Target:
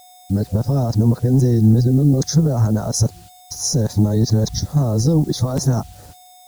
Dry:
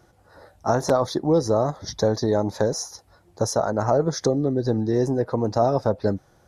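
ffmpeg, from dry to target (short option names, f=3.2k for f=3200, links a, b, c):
-filter_complex "[0:a]areverse,agate=range=-37dB:threshold=-45dB:ratio=16:detection=peak,asplit=2[a][b];[b]acompressor=threshold=-32dB:ratio=5,volume=-2dB[c];[a][c]amix=inputs=2:normalize=0,alimiter=limit=-14dB:level=0:latency=1:release=34,acrossover=split=260|4800[d][e][f];[d]dynaudnorm=f=240:g=3:m=13dB[g];[g][e][f]amix=inputs=3:normalize=0,aeval=exprs='val(0)+0.00708*sin(2*PI*730*n/s)':c=same,acrusher=bits=7:mix=0:aa=0.000001,bass=f=250:g=6,treble=f=4k:g=12,volume=-4dB"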